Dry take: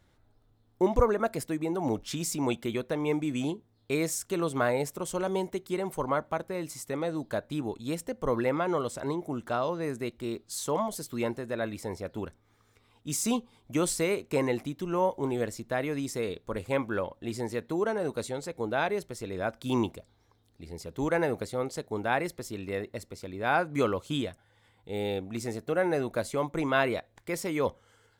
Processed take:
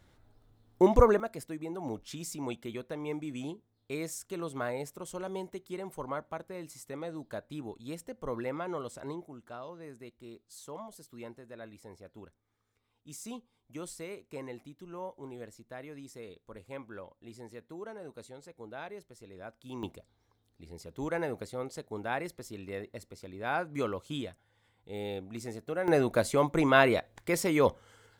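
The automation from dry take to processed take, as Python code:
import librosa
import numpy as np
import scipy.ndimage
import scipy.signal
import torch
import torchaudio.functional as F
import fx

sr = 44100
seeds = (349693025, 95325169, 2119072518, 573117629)

y = fx.gain(x, sr, db=fx.steps((0.0, 2.5), (1.2, -8.0), (9.25, -14.5), (19.83, -6.0), (25.88, 3.5)))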